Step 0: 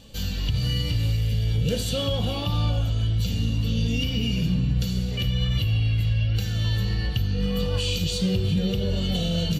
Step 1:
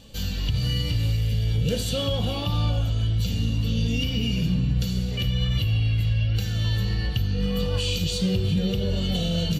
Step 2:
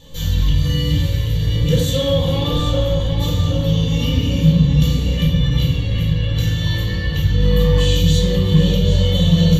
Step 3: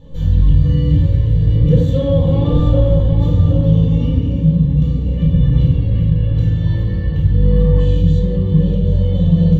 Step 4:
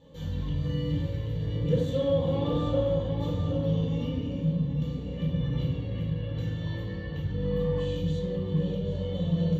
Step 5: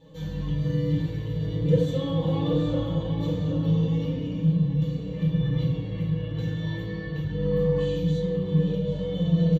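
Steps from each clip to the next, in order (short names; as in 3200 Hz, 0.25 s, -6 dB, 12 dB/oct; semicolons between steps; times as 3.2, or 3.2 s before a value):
nothing audible
ripple EQ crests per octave 1.1, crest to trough 9 dB; tape echo 0.779 s, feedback 57%, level -4 dB, low-pass 4200 Hz; shoebox room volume 700 m³, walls furnished, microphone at 4.2 m; gain -1 dB
LPF 1700 Hz 6 dB/oct; tilt shelf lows +7 dB, about 880 Hz; AGC; gain -1 dB
HPF 400 Hz 6 dB/oct; gain -5.5 dB
comb 6.3 ms, depth 87%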